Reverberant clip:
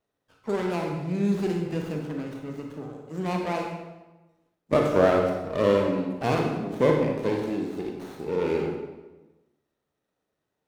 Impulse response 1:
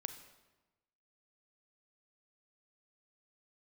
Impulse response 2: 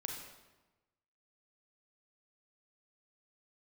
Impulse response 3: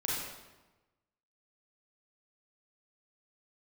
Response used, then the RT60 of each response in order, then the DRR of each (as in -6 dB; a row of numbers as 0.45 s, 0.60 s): 2; 1.1 s, 1.1 s, 1.1 s; 8.5 dB, 1.0 dB, -6.0 dB